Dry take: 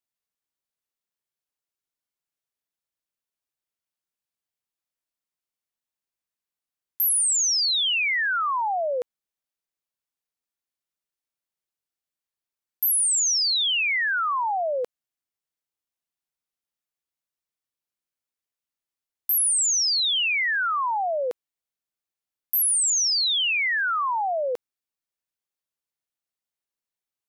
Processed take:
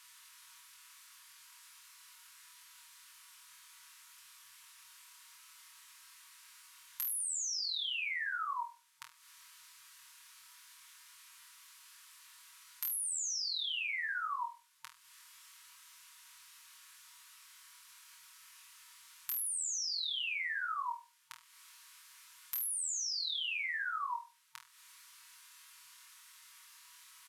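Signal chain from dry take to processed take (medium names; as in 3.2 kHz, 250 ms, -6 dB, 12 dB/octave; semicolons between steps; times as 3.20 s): spectral levelling over time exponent 0.6; compression 6:1, threshold -37 dBFS, peak gain reduction 15.5 dB; comb 6.2 ms; on a send: flutter echo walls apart 4.2 m, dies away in 0.31 s; on the sum: FFT band-reject 140–910 Hz; trim -4 dB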